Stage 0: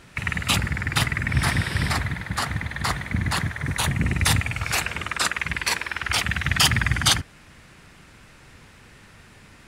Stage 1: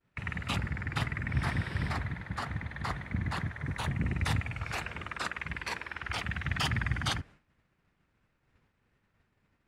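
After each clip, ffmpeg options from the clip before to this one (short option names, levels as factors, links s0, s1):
-af "lowpass=f=1800:p=1,agate=range=0.0224:threshold=0.0112:ratio=3:detection=peak,volume=0.398"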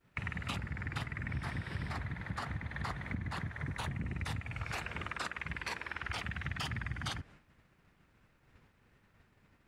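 -af "acompressor=threshold=0.00794:ratio=6,volume=2"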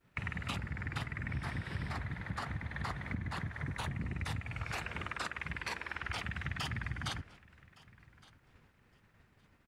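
-af "aecho=1:1:1164|2328:0.075|0.0135"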